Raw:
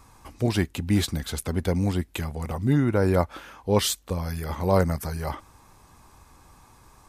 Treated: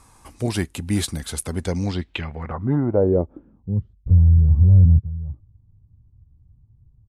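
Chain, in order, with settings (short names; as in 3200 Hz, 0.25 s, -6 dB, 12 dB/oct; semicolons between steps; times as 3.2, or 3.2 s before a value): downsampling 32000 Hz; 4.06–4.99 power-law curve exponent 0.35; low-pass sweep 10000 Hz -> 110 Hz, 1.53–3.89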